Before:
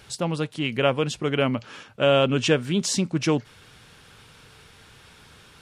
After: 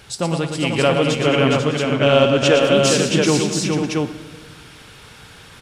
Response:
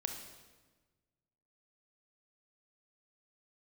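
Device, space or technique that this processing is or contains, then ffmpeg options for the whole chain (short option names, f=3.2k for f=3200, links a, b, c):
saturated reverb return: -filter_complex "[0:a]asplit=2[a][b];[1:a]atrim=start_sample=2205[c];[b][c]afir=irnorm=-1:irlink=0,asoftclip=type=tanh:threshold=-14dB,volume=-2dB[d];[a][d]amix=inputs=2:normalize=0,asettb=1/sr,asplit=3[e][f][g];[e]atrim=end=2.434[h];[f]atrim=start=2.43:end=3.09,asetpts=PTS-STARTPTS,afade=t=in:d=0.004:c=qsin,afade=t=out:st=0.656:d=0.004:c=qsin,highpass=250[i];[g]atrim=start=3.086[j];[h][i]acrossfade=d=0.004:c1=hsin:c2=qsin[k];[k][j]acrossfade=d=0.004:c1=qsin:c2=hsin,aecho=1:1:115|212|415|492|604|677:0.447|0.2|0.562|0.398|0.15|0.668"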